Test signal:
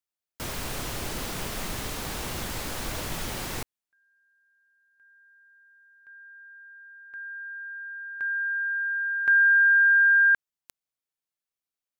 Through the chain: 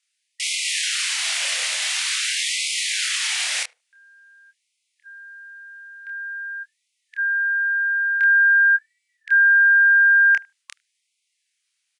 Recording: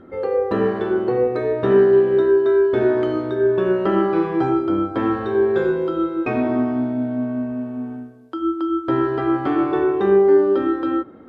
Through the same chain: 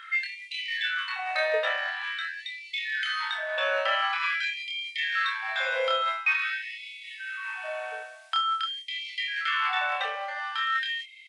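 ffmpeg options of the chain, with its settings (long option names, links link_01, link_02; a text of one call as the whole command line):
ffmpeg -i in.wav -filter_complex "[0:a]highshelf=frequency=1500:width_type=q:width=1.5:gain=12.5,areverse,acompressor=threshold=-21dB:ratio=12:attack=0.18:release=286:knee=1:detection=peak,areverse,asplit=2[link_01][link_02];[link_02]adelay=27,volume=-3.5dB[link_03];[link_01][link_03]amix=inputs=2:normalize=0,asplit=2[link_04][link_05];[link_05]adelay=75,lowpass=frequency=950:poles=1,volume=-20dB,asplit=2[link_06][link_07];[link_07]adelay=75,lowpass=frequency=950:poles=1,volume=0.22[link_08];[link_06][link_08]amix=inputs=2:normalize=0[link_09];[link_04][link_09]amix=inputs=2:normalize=0,aresample=22050,aresample=44100,afftfilt=real='re*gte(b*sr/1024,470*pow(2000/470,0.5+0.5*sin(2*PI*0.47*pts/sr)))':imag='im*gte(b*sr/1024,470*pow(2000/470,0.5+0.5*sin(2*PI*0.47*pts/sr)))':win_size=1024:overlap=0.75,volume=5.5dB" out.wav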